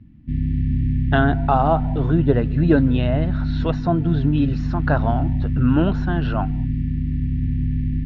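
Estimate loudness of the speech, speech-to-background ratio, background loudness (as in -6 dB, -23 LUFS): -21.5 LUFS, 2.0 dB, -23.5 LUFS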